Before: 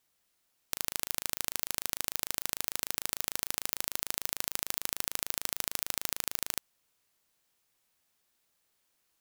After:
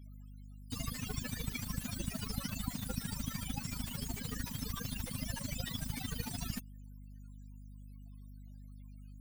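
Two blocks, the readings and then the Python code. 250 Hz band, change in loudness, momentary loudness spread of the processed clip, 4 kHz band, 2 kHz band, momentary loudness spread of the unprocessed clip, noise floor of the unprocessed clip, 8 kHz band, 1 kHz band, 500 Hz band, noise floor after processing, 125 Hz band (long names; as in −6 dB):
+11.5 dB, −6.5 dB, 15 LU, −6.5 dB, −6.0 dB, 1 LU, −76 dBFS, −9.0 dB, −5.5 dB, −4.0 dB, −51 dBFS, +15.5 dB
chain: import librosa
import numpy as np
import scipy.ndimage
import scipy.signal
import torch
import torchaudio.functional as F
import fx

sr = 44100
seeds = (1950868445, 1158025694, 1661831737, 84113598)

p1 = fx.add_hum(x, sr, base_hz=50, snr_db=33)
p2 = np.clip(p1, -10.0 ** (-13.5 / 20.0), 10.0 ** (-13.5 / 20.0))
p3 = p1 + F.gain(torch.from_numpy(p2), -7.5).numpy()
p4 = fx.spec_topn(p3, sr, count=16)
p5 = fx.slew_limit(p4, sr, full_power_hz=7.9)
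y = F.gain(torch.from_numpy(p5), 17.5).numpy()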